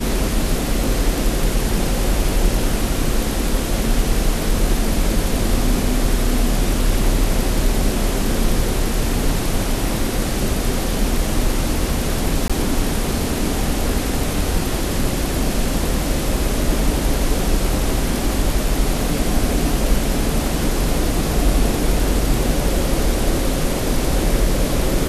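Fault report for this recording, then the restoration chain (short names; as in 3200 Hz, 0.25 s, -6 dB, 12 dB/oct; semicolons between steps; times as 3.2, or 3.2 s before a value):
12.48–12.5 gap 16 ms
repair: interpolate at 12.48, 16 ms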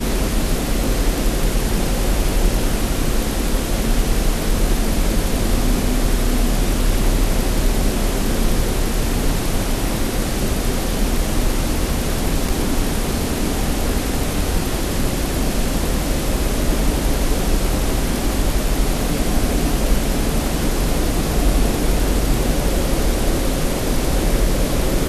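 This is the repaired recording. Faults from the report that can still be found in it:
none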